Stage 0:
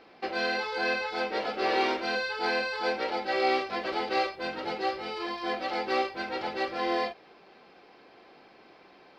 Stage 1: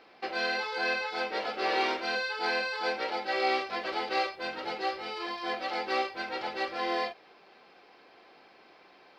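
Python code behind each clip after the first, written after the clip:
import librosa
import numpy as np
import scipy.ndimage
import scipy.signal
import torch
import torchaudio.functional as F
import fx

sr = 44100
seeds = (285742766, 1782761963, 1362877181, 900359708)

y = fx.low_shelf(x, sr, hz=390.0, db=-8.0)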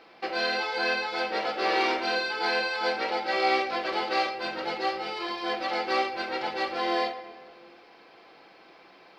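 y = fx.room_shoebox(x, sr, seeds[0], volume_m3=2400.0, walls='mixed', distance_m=0.7)
y = y * librosa.db_to_amplitude(3.0)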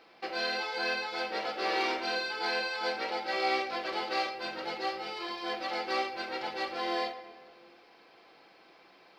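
y = fx.high_shelf(x, sr, hz=5500.0, db=6.0)
y = y * librosa.db_to_amplitude(-5.5)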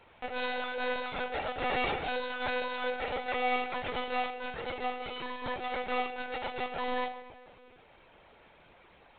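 y = fx.lpc_monotone(x, sr, seeds[1], pitch_hz=250.0, order=16)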